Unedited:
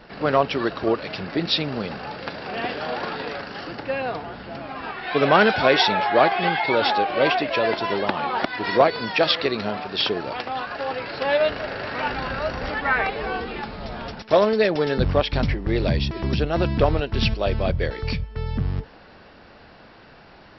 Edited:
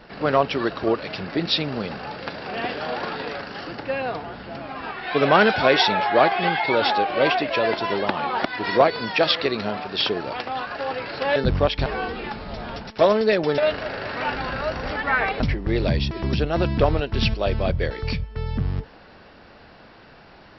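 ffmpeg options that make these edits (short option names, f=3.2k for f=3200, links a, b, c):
-filter_complex "[0:a]asplit=5[a][b][c][d][e];[a]atrim=end=11.362[f];[b]atrim=start=14.898:end=15.402[g];[c]atrim=start=13.178:end=14.902[h];[d]atrim=start=11.358:end=13.182[i];[e]atrim=start=15.398[j];[f][g]acrossfade=d=0.004:c1=hsin:c2=hsin[k];[k][h]acrossfade=d=0.004:c1=hsin:c2=hsin[l];[l][i]acrossfade=d=0.004:c1=hsin:c2=hsin[m];[m][j]acrossfade=d=0.004:c1=hsin:c2=hsin"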